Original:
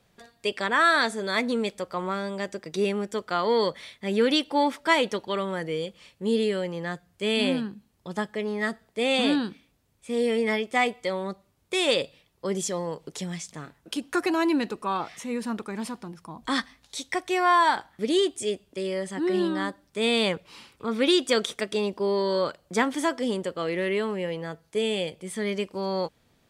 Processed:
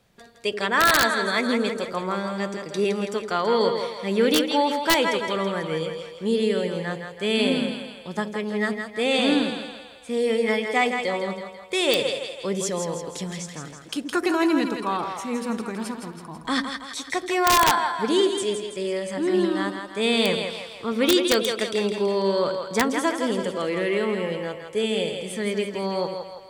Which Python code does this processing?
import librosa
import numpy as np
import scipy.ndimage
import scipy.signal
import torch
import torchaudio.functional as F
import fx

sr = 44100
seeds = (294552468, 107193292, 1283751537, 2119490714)

y = fx.echo_split(x, sr, split_hz=500.0, low_ms=81, high_ms=164, feedback_pct=52, wet_db=-6)
y = (np.mod(10.0 ** (11.0 / 20.0) * y + 1.0, 2.0) - 1.0) / 10.0 ** (11.0 / 20.0)
y = y * 10.0 ** (1.5 / 20.0)